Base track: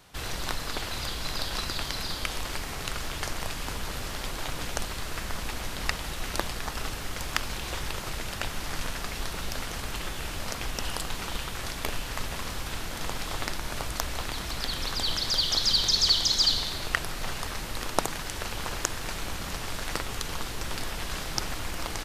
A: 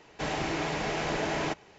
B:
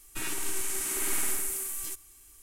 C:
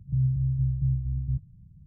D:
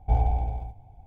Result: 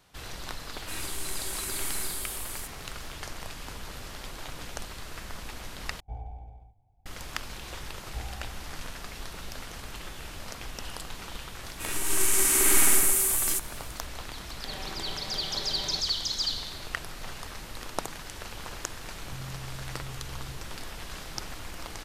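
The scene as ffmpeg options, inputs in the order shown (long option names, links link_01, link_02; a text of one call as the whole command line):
ffmpeg -i bed.wav -i cue0.wav -i cue1.wav -i cue2.wav -i cue3.wav -filter_complex "[2:a]asplit=2[link_01][link_02];[4:a]asplit=2[link_03][link_04];[0:a]volume=-6.5dB[link_05];[link_02]dynaudnorm=framelen=190:gausssize=5:maxgain=13dB[link_06];[1:a]aecho=1:1:5.2:0.83[link_07];[3:a]alimiter=level_in=4.5dB:limit=-24dB:level=0:latency=1:release=71,volume=-4.5dB[link_08];[link_05]asplit=2[link_09][link_10];[link_09]atrim=end=6.004[link_11];[link_03]atrim=end=1.06,asetpts=PTS-STARTPTS,volume=-17dB[link_12];[link_10]atrim=start=7.056[link_13];[link_01]atrim=end=2.42,asetpts=PTS-STARTPTS,volume=-4dB,afade=type=in:duration=0.004:curve=hsin,afade=type=out:start_time=2.416:duration=0.004:curve=hsin,adelay=720[link_14];[link_04]atrim=end=1.06,asetpts=PTS-STARTPTS,volume=-16.5dB,afade=type=in:duration=0.004:curve=hsin,afade=type=out:start_time=1.056:duration=0.004:curve=hsin,adelay=8050[link_15];[link_06]atrim=end=2.42,asetpts=PTS-STARTPTS,volume=-3dB,afade=type=in:duration=0.004:curve=hsin,afade=type=out:start_time=2.416:duration=0.004:curve=hsin,adelay=11640[link_16];[link_07]atrim=end=1.78,asetpts=PTS-STARTPTS,volume=-13.5dB,afade=type=in:duration=0.004:curve=hsin,afade=type=out:start_time=1.776:duration=0.004:curve=hsin,adelay=14470[link_17];[link_08]atrim=end=1.86,asetpts=PTS-STARTPTS,volume=-8.5dB,afade=type=in:duration=0.004:curve=hsin,afade=type=out:start_time=1.856:duration=0.004:curve=hsin,adelay=19200[link_18];[link_11][link_12]acrossfade=duration=0.004:curve1=hsin:curve2=hsin[link_19];[link_19][link_13]acrossfade=duration=0.004:curve1=hsin:curve2=hsin[link_20];[link_20][link_14][link_15][link_16][link_17][link_18]amix=inputs=6:normalize=0" out.wav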